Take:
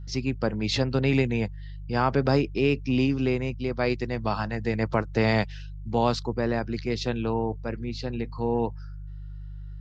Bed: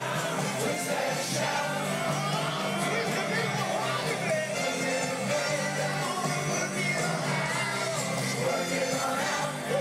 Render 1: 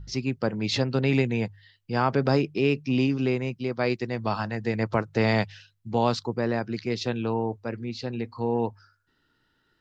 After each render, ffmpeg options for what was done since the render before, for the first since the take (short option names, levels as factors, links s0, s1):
-af "bandreject=f=50:t=h:w=4,bandreject=f=100:t=h:w=4,bandreject=f=150:t=h:w=4"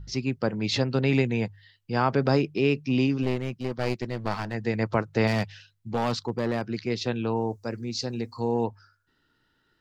-filter_complex "[0:a]asplit=3[s0][s1][s2];[s0]afade=t=out:st=3.22:d=0.02[s3];[s1]aeval=exprs='clip(val(0),-1,0.02)':c=same,afade=t=in:st=3.22:d=0.02,afade=t=out:st=4.53:d=0.02[s4];[s2]afade=t=in:st=4.53:d=0.02[s5];[s3][s4][s5]amix=inputs=3:normalize=0,asettb=1/sr,asplit=3[s6][s7][s8];[s6]atrim=end=5.274[s9];[s7]atrim=start=5.27:end=6.65,asetpts=PTS-STARTPTS,afade=t=in:d=0.004:c=qsin,afade=t=out:st=1.376:d=0.004:c=qsin,asoftclip=type=hard:threshold=0.1[s10];[s8]atrim=start=6.646[s11];[s9][s10]acrossfade=d=0.004:c1=hsin:c2=qsin[s12];[s12][s11]acrossfade=d=0.004:c1=qsin:c2=hsin,asettb=1/sr,asplit=3[s13][s14][s15];[s13]atrim=end=7.364[s16];[s14]atrim=start=7.36:end=8.64,asetpts=PTS-STARTPTS,afade=t=in:d=0.004:c=qsin,afade=t=out:st=1.276:d=0.004:c=qsin,highshelf=f=4200:t=q:w=1.5:g=11[s17];[s15]atrim=start=8.636[s18];[s16][s17]acrossfade=d=0.004:c1=hsin:c2=qsin[s19];[s19][s18]acrossfade=d=0.004:c1=qsin:c2=hsin"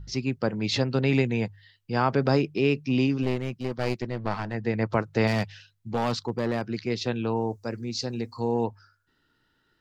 -filter_complex "[0:a]asettb=1/sr,asplit=3[s0][s1][s2];[s0]atrim=end=4.024[s3];[s1]atrim=start=4.02:end=4.9,asetpts=PTS-STARTPTS,afade=t=in:d=0.004:c=qsin,afade=t=out:st=0.876:d=0.004:c=qsin,aemphasis=mode=reproduction:type=50fm[s4];[s2]atrim=start=4.896[s5];[s3][s4]acrossfade=d=0.004:c1=hsin:c2=qsin[s6];[s6][s5]acrossfade=d=0.004:c1=qsin:c2=hsin"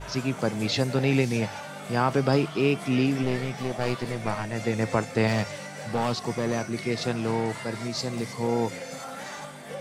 -filter_complex "[1:a]volume=0.355[s0];[0:a][s0]amix=inputs=2:normalize=0"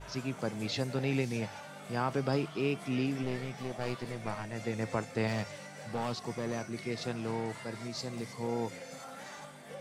-af "volume=0.376"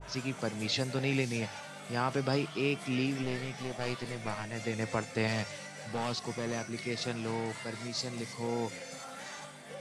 -af "lowpass=f=11000:w=0.5412,lowpass=f=11000:w=1.3066,adynamicequalizer=threshold=0.00282:dfrequency=1600:dqfactor=0.7:tfrequency=1600:tqfactor=0.7:attack=5:release=100:ratio=0.375:range=2.5:mode=boostabove:tftype=highshelf"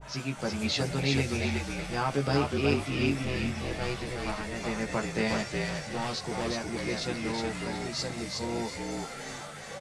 -filter_complex "[0:a]asplit=2[s0][s1];[s1]adelay=14,volume=0.708[s2];[s0][s2]amix=inputs=2:normalize=0,asplit=5[s3][s4][s5][s6][s7];[s4]adelay=366,afreqshift=-46,volume=0.708[s8];[s5]adelay=732,afreqshift=-92,volume=0.211[s9];[s6]adelay=1098,afreqshift=-138,volume=0.0638[s10];[s7]adelay=1464,afreqshift=-184,volume=0.0191[s11];[s3][s8][s9][s10][s11]amix=inputs=5:normalize=0"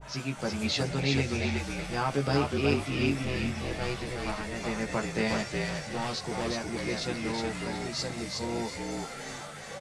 -filter_complex "[0:a]asettb=1/sr,asplit=3[s0][s1][s2];[s0]atrim=end=0.834[s3];[s1]atrim=start=0.83:end=1.58,asetpts=PTS-STARTPTS,afade=t=in:d=0.004:c=qsin,afade=t=out:st=0.746:d=0.004:c=qsin,lowpass=8100[s4];[s2]atrim=start=1.576[s5];[s3][s4]acrossfade=d=0.004:c1=hsin:c2=qsin[s6];[s6][s5]acrossfade=d=0.004:c1=qsin:c2=hsin"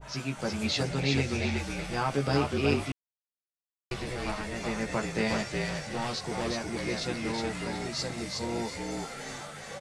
-filter_complex "[0:a]asplit=3[s0][s1][s2];[s0]atrim=end=2.92,asetpts=PTS-STARTPTS,afade=t=out:st=2.916:d=0.004:c=hsin[s3];[s1]atrim=start=2.92:end=3.91,asetpts=PTS-STARTPTS,volume=0[s4];[s2]atrim=start=3.91,asetpts=PTS-STARTPTS,afade=t=in:d=0.004:c=hsin[s5];[s3][s4][s5]concat=n=3:v=0:a=1"